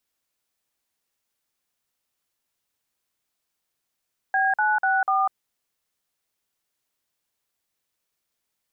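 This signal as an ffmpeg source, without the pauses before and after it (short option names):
-f lavfi -i "aevalsrc='0.0891*clip(min(mod(t,0.246),0.198-mod(t,0.246))/0.002,0,1)*(eq(floor(t/0.246),0)*(sin(2*PI*770*mod(t,0.246))+sin(2*PI*1633*mod(t,0.246)))+eq(floor(t/0.246),1)*(sin(2*PI*852*mod(t,0.246))+sin(2*PI*1477*mod(t,0.246)))+eq(floor(t/0.246),2)*(sin(2*PI*770*mod(t,0.246))+sin(2*PI*1477*mod(t,0.246)))+eq(floor(t/0.246),3)*(sin(2*PI*770*mod(t,0.246))+sin(2*PI*1209*mod(t,0.246))))':d=0.984:s=44100"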